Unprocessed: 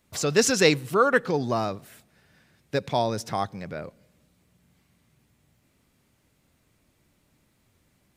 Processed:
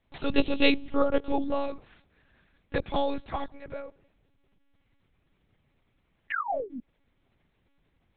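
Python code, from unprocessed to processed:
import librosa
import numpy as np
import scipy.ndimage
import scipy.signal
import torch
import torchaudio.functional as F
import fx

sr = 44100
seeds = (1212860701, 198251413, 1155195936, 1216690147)

y = fx.spec_paint(x, sr, seeds[0], shape='fall', start_s=6.3, length_s=0.5, low_hz=220.0, high_hz=1900.0, level_db=-28.0)
y = fx.env_flanger(y, sr, rest_ms=11.3, full_db=-21.0)
y = fx.lpc_monotone(y, sr, seeds[1], pitch_hz=280.0, order=8)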